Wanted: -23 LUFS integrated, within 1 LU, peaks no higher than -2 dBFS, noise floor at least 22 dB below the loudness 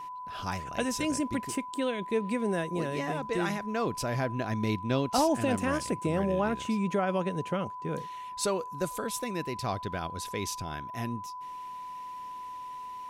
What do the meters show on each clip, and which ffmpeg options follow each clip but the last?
steady tone 1000 Hz; tone level -38 dBFS; loudness -32.0 LUFS; peak -14.5 dBFS; loudness target -23.0 LUFS
-> -af "bandreject=f=1k:w=30"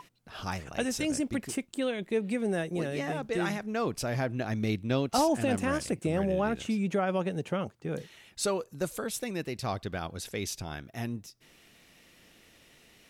steady tone none; loudness -32.0 LUFS; peak -15.0 dBFS; loudness target -23.0 LUFS
-> -af "volume=9dB"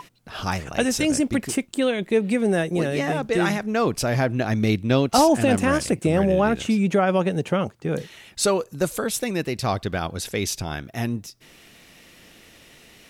loudness -23.0 LUFS; peak -6.0 dBFS; noise floor -51 dBFS

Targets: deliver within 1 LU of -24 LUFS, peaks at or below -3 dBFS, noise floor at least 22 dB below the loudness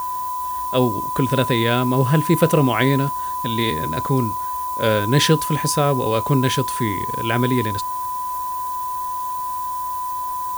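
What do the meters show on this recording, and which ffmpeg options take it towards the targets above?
steady tone 1000 Hz; tone level -23 dBFS; noise floor -26 dBFS; noise floor target -43 dBFS; loudness -20.5 LUFS; peak -1.5 dBFS; loudness target -24.0 LUFS
-> -af "bandreject=f=1k:w=30"
-af "afftdn=nr=17:nf=-26"
-af "volume=-3.5dB"

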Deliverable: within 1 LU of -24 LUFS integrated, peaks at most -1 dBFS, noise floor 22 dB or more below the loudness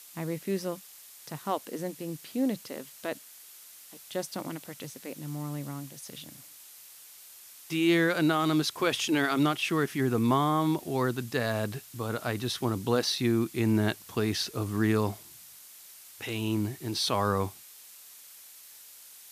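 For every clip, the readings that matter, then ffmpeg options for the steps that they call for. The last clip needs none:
noise floor -51 dBFS; noise floor target -52 dBFS; loudness -29.5 LUFS; peak -12.0 dBFS; loudness target -24.0 LUFS
-> -af "afftdn=nr=6:nf=-51"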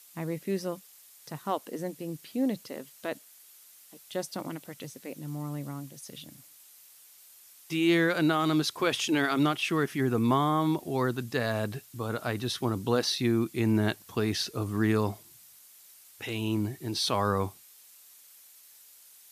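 noise floor -55 dBFS; loudness -29.5 LUFS; peak -12.0 dBFS; loudness target -24.0 LUFS
-> -af "volume=5.5dB"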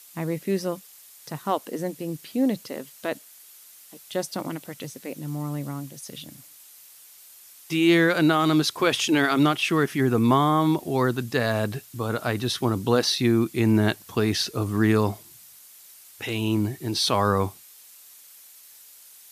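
loudness -24.0 LUFS; peak -6.5 dBFS; noise floor -50 dBFS

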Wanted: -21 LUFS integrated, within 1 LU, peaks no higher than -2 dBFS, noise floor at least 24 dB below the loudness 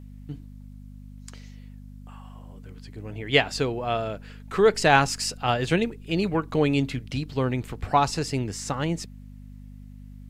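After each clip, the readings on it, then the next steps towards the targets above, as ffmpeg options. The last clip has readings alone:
hum 50 Hz; harmonics up to 250 Hz; hum level -41 dBFS; loudness -25.0 LUFS; peak -3.0 dBFS; loudness target -21.0 LUFS
-> -af "bandreject=f=50:t=h:w=4,bandreject=f=100:t=h:w=4,bandreject=f=150:t=h:w=4,bandreject=f=200:t=h:w=4,bandreject=f=250:t=h:w=4"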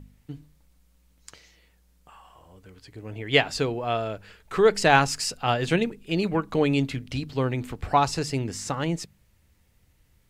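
hum none; loudness -25.0 LUFS; peak -3.0 dBFS; loudness target -21.0 LUFS
-> -af "volume=4dB,alimiter=limit=-2dB:level=0:latency=1"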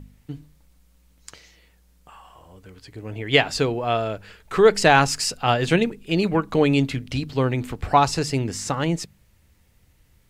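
loudness -21.0 LUFS; peak -2.0 dBFS; noise floor -59 dBFS

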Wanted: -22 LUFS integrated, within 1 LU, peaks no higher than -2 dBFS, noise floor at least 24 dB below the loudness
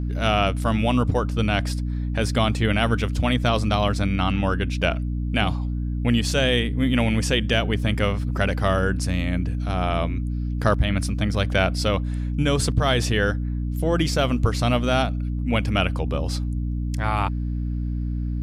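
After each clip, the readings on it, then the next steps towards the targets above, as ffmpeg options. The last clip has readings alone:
hum 60 Hz; harmonics up to 300 Hz; hum level -23 dBFS; loudness -23.0 LUFS; peak -5.0 dBFS; loudness target -22.0 LUFS
-> -af "bandreject=f=60:t=h:w=6,bandreject=f=120:t=h:w=6,bandreject=f=180:t=h:w=6,bandreject=f=240:t=h:w=6,bandreject=f=300:t=h:w=6"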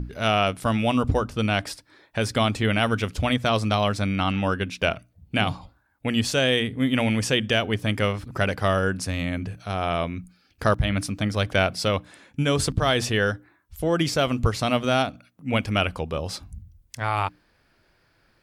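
hum none; loudness -24.5 LUFS; peak -6.0 dBFS; loudness target -22.0 LUFS
-> -af "volume=2.5dB"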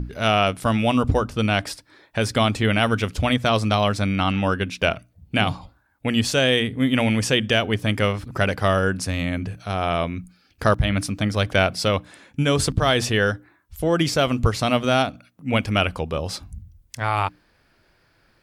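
loudness -22.0 LUFS; peak -3.5 dBFS; noise floor -62 dBFS

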